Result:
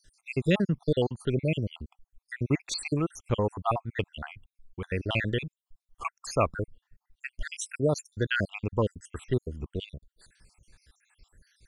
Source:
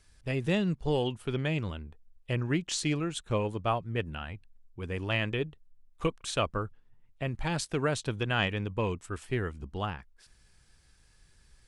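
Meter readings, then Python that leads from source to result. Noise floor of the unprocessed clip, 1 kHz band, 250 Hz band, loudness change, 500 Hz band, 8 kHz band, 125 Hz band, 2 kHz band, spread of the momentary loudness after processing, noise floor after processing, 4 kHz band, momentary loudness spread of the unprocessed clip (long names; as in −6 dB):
−63 dBFS, +0.5 dB, +1.5 dB, +1.5 dB, +2.5 dB, −0.5 dB, +1.5 dB, +0.5 dB, 16 LU, below −85 dBFS, −1.5 dB, 10 LU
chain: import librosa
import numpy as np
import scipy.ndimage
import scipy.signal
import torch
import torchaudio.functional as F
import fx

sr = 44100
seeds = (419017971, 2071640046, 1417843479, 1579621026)

y = fx.spec_dropout(x, sr, seeds[0], share_pct=68)
y = F.gain(torch.from_numpy(y), 5.0).numpy()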